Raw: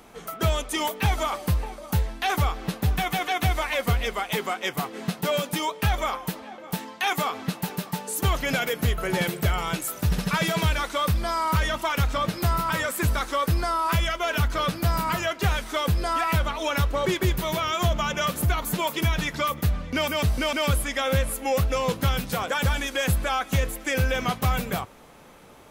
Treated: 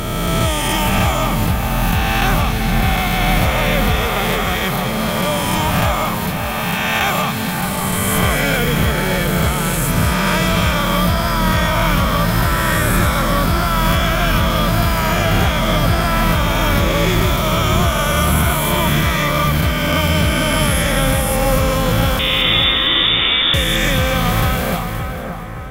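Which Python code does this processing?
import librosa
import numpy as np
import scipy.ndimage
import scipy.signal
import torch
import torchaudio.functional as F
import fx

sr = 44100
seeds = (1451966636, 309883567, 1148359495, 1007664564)

y = fx.spec_swells(x, sr, rise_s=2.9)
y = fx.freq_invert(y, sr, carrier_hz=3600, at=(22.19, 23.54))
y = fx.echo_split(y, sr, split_hz=2000.0, low_ms=570, high_ms=225, feedback_pct=52, wet_db=-7.0)
y = y * librosa.db_to_amplitude(2.0)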